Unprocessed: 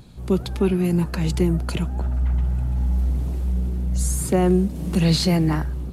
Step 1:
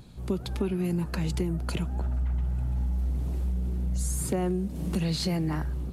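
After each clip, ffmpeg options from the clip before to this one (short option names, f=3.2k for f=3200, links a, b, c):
-af "acompressor=threshold=-21dB:ratio=6,volume=-3.5dB"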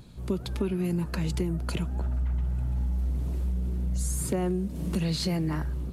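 -af "bandreject=f=780:w=12"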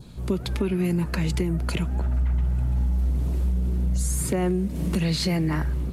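-filter_complex "[0:a]adynamicequalizer=threshold=0.00178:dfrequency=2100:dqfactor=2.3:tfrequency=2100:tqfactor=2.3:attack=5:release=100:ratio=0.375:range=2.5:mode=boostabove:tftype=bell,asplit=2[a][b];[b]alimiter=limit=-23dB:level=0:latency=1:release=211,volume=-1dB[c];[a][c]amix=inputs=2:normalize=0"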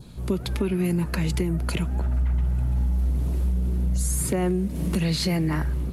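-af "equalizer=f=11k:t=o:w=0.21:g=6"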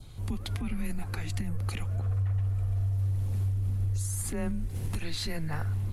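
-af "alimiter=limit=-20dB:level=0:latency=1:release=123,afreqshift=-160,volume=-3dB"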